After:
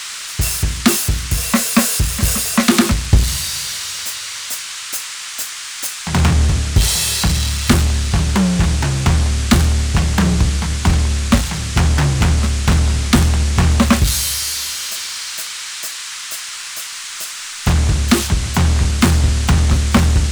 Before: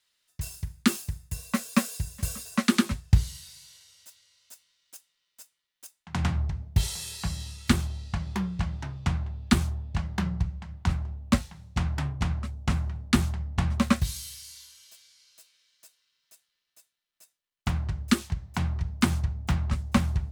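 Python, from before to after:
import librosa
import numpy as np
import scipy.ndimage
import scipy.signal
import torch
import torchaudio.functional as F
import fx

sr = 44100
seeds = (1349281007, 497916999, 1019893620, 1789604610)

y = fx.power_curve(x, sr, exponent=0.5)
y = fx.dmg_noise_band(y, sr, seeds[0], low_hz=1100.0, high_hz=8800.0, level_db=-34.0)
y = y * 10.0 ** (5.0 / 20.0)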